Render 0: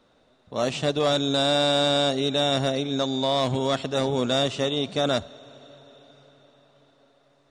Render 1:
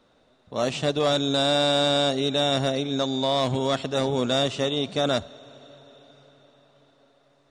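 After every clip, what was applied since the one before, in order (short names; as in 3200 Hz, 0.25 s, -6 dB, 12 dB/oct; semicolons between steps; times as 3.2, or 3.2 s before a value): nothing audible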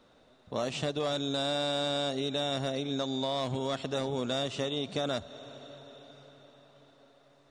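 compressor 4:1, threshold -30 dBFS, peak gain reduction 10 dB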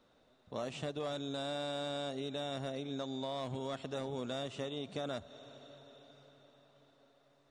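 dynamic EQ 4800 Hz, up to -5 dB, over -47 dBFS, Q 1.1; gain -7 dB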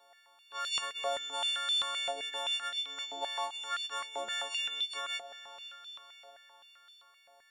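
frequency quantiser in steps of 4 st; stepped high-pass 7.7 Hz 720–3600 Hz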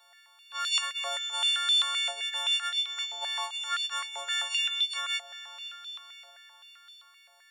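HPF 1300 Hz 12 dB/oct; gain +6.5 dB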